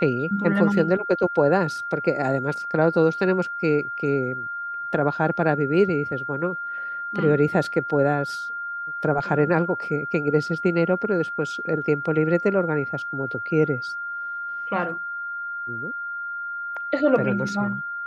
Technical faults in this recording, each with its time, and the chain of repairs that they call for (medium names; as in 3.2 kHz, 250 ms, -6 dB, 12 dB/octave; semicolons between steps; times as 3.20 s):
whine 1.4 kHz -28 dBFS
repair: band-stop 1.4 kHz, Q 30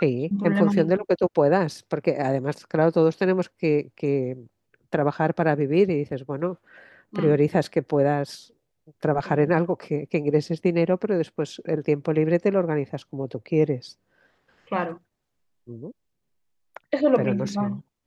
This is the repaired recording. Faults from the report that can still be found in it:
nothing left